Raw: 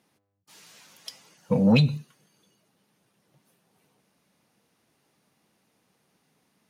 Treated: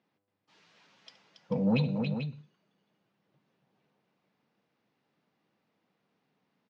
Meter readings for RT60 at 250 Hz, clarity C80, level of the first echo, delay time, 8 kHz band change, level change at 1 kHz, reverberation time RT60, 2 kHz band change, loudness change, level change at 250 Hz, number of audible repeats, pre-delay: no reverb audible, no reverb audible, −17.0 dB, 72 ms, can't be measured, −6.0 dB, no reverb audible, −7.5 dB, −8.0 dB, −6.5 dB, 3, no reverb audible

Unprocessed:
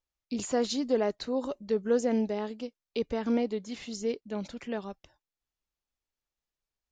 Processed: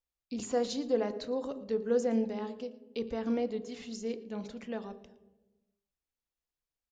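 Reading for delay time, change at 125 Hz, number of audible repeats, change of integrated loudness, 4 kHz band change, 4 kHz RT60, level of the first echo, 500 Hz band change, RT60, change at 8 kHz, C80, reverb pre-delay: 114 ms, can't be measured, 1, −3.0 dB, −5.0 dB, 0.90 s, −21.0 dB, −2.5 dB, 1.1 s, −5.0 dB, 15.5 dB, 3 ms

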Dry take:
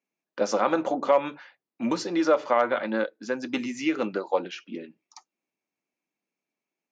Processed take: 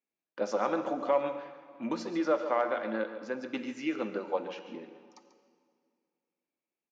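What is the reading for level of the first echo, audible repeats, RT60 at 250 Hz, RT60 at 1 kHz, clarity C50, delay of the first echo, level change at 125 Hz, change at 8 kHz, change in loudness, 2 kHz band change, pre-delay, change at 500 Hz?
−12.5 dB, 1, 2.3 s, 2.0 s, 8.5 dB, 141 ms, −6.5 dB, can't be measured, −6.5 dB, −7.0 dB, 38 ms, −5.5 dB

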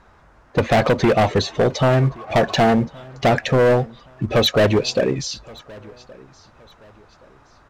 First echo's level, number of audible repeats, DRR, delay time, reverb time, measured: −24.0 dB, 2, no reverb audible, 1,121 ms, no reverb audible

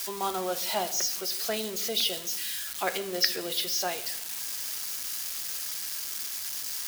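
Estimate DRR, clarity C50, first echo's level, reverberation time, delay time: 9.0 dB, 14.0 dB, no echo audible, 0.90 s, no echo audible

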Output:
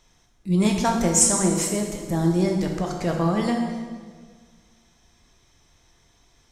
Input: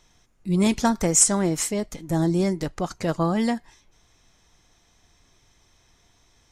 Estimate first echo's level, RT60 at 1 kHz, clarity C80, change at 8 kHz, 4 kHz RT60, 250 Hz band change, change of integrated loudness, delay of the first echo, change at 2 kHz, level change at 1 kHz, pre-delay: no echo audible, 1.5 s, 5.5 dB, +0.5 dB, 1.3 s, +1.0 dB, +0.5 dB, no echo audible, +0.5 dB, +1.5 dB, 10 ms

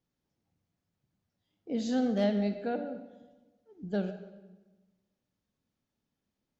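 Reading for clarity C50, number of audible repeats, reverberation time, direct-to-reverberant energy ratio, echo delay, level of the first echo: 9.0 dB, no echo audible, 1.2 s, 8.0 dB, no echo audible, no echo audible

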